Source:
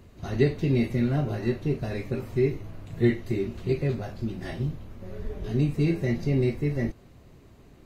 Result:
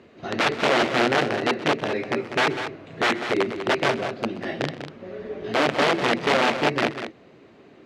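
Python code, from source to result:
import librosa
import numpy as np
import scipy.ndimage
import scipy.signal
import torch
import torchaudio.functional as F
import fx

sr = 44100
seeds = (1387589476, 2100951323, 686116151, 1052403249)

y = (np.mod(10.0 ** (20.0 / 20.0) * x + 1.0, 2.0) - 1.0) / 10.0 ** (20.0 / 20.0)
y = fx.bandpass_edges(y, sr, low_hz=300.0, high_hz=3200.0)
y = fx.peak_eq(y, sr, hz=980.0, db=-4.5, octaves=0.67)
y = fx.echo_multitap(y, sr, ms=(127, 197), db=(-17.5, -9.5))
y = y * 10.0 ** (8.5 / 20.0)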